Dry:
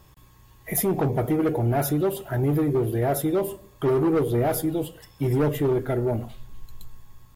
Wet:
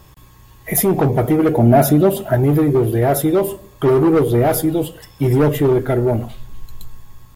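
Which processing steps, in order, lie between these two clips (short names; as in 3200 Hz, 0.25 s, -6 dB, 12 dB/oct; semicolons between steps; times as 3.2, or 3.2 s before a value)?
1.58–2.35 small resonant body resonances 220/630 Hz, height 11 dB; gain +8 dB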